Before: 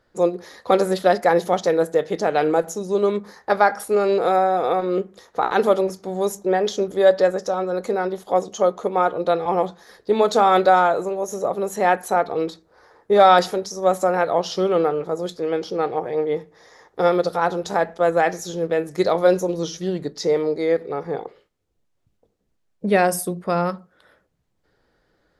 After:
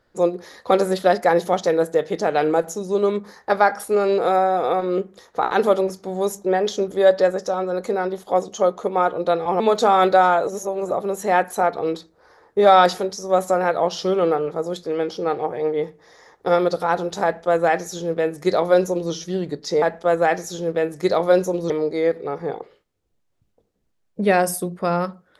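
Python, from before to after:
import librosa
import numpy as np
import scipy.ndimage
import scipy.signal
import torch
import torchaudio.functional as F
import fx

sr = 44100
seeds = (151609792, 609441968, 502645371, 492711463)

y = fx.edit(x, sr, fx.cut(start_s=9.6, length_s=0.53),
    fx.reverse_span(start_s=11.0, length_s=0.44),
    fx.duplicate(start_s=17.77, length_s=1.88, to_s=20.35), tone=tone)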